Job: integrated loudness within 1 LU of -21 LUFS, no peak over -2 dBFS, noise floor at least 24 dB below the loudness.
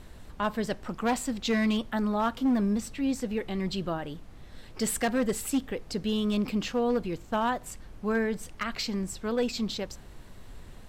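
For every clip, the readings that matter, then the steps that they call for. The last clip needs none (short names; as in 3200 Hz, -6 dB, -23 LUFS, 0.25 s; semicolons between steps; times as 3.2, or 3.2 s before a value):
clipped 0.9%; flat tops at -20.5 dBFS; noise floor -48 dBFS; noise floor target -54 dBFS; loudness -30.0 LUFS; peak -20.5 dBFS; loudness target -21.0 LUFS
-> clip repair -20.5 dBFS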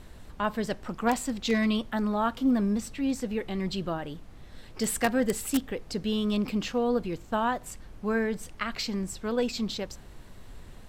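clipped 0.0%; noise floor -48 dBFS; noise floor target -54 dBFS
-> noise print and reduce 6 dB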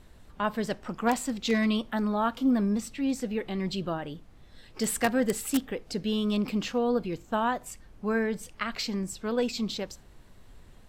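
noise floor -54 dBFS; loudness -29.5 LUFS; peak -11.5 dBFS; loudness target -21.0 LUFS
-> gain +8.5 dB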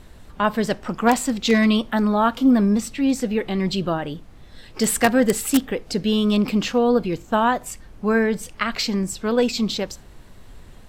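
loudness -21.0 LUFS; peak -3.0 dBFS; noise floor -45 dBFS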